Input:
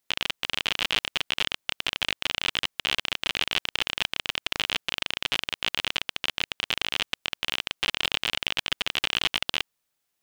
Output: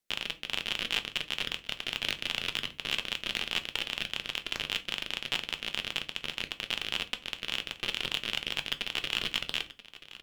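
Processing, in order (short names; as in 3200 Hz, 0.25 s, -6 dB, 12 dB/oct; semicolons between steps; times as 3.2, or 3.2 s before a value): in parallel at -9 dB: hard clip -16 dBFS, distortion -9 dB; on the sum: rotary speaker horn 5 Hz; soft clip -8 dBFS, distortion -22 dB; echo 0.982 s -16.5 dB; on a send at -8.5 dB: reverb RT60 0.35 s, pre-delay 4 ms; 2.04–2.78 on the sum: three-band squash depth 100%; gain -4 dB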